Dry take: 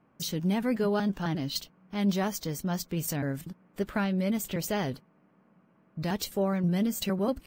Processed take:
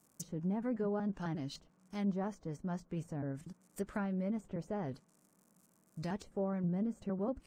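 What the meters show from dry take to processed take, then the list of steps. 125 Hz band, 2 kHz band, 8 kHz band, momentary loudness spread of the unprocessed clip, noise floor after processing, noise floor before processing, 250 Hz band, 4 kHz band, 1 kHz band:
-8.0 dB, -13.0 dB, -16.0 dB, 9 LU, -71 dBFS, -65 dBFS, -8.0 dB, -19.0 dB, -9.0 dB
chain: crackle 180/s -55 dBFS; resonant high shelf 5300 Hz +14 dB, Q 1.5; treble ducked by the level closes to 1100 Hz, closed at -23 dBFS; gain -8 dB

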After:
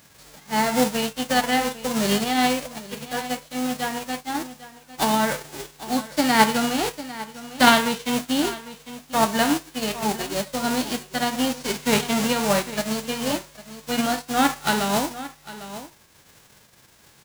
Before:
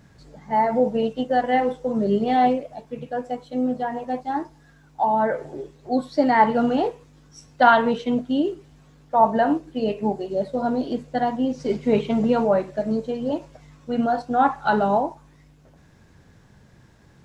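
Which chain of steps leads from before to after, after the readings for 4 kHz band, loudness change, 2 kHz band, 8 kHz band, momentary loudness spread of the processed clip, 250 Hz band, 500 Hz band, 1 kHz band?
+13.5 dB, -0.5 dB, +4.5 dB, n/a, 16 LU, -0.5 dB, -4.0 dB, -2.5 dB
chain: spectral whitening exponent 0.3; echo 0.801 s -15.5 dB; tremolo triangle 1.6 Hz, depth 35%

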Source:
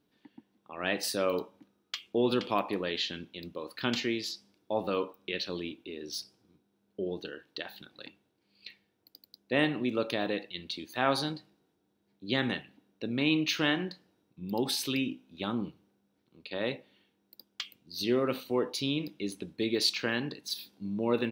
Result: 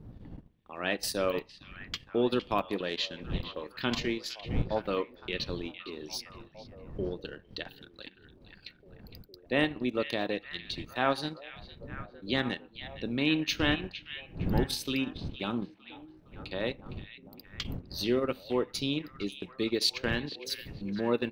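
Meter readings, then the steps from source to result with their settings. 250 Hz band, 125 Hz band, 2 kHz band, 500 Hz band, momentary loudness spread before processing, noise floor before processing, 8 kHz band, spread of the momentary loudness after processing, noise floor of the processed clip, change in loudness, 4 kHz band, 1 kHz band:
-0.5 dB, +3.5 dB, 0.0 dB, 0.0 dB, 16 LU, -76 dBFS, -1.5 dB, 20 LU, -58 dBFS, -0.5 dB, -0.5 dB, 0.0 dB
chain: wind noise 170 Hz -42 dBFS; transient shaper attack 0 dB, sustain -12 dB; delay with a stepping band-pass 0.46 s, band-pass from 2700 Hz, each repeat -0.7 oct, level -9 dB

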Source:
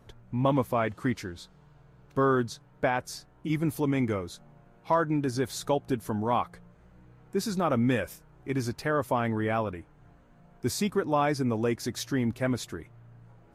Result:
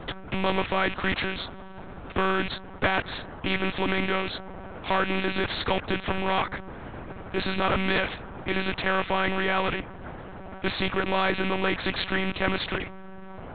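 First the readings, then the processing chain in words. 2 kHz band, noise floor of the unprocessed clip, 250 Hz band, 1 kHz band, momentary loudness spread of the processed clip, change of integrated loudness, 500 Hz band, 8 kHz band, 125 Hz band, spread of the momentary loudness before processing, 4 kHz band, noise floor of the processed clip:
+9.5 dB, -58 dBFS, -1.5 dB, +2.5 dB, 15 LU, +2.0 dB, +0.5 dB, under -25 dB, -2.5 dB, 12 LU, +10.5 dB, -41 dBFS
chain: rattling part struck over -41 dBFS, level -36 dBFS; dynamic EQ 1600 Hz, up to +5 dB, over -44 dBFS, Q 1.7; in parallel at 0 dB: limiter -23.5 dBFS, peak gain reduction 11 dB; on the sum: monotone LPC vocoder at 8 kHz 190 Hz; spectral compressor 2:1

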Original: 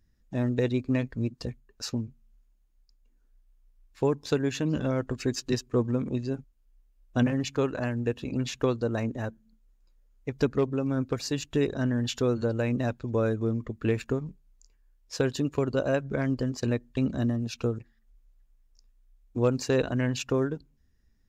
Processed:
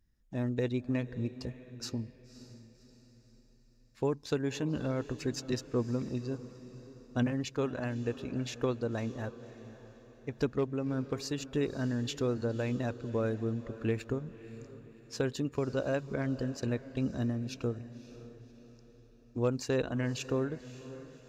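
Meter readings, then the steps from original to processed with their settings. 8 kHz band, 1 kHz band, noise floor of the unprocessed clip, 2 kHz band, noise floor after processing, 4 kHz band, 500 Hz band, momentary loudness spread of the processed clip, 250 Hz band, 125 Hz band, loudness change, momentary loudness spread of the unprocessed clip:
-5.5 dB, -5.5 dB, -66 dBFS, -5.5 dB, -61 dBFS, -5.5 dB, -5.5 dB, 16 LU, -5.5 dB, -5.5 dB, -5.5 dB, 8 LU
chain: diffused feedback echo 0.561 s, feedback 45%, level -15 dB; gain -5.5 dB

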